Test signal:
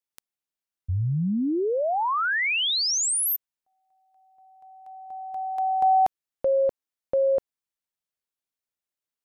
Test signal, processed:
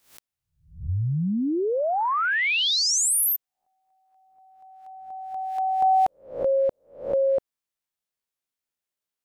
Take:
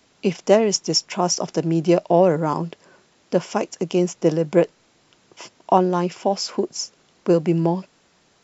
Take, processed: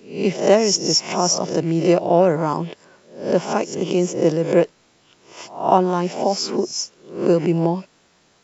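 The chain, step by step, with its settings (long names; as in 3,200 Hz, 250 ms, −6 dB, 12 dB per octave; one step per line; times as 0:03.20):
peak hold with a rise ahead of every peak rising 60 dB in 0.45 s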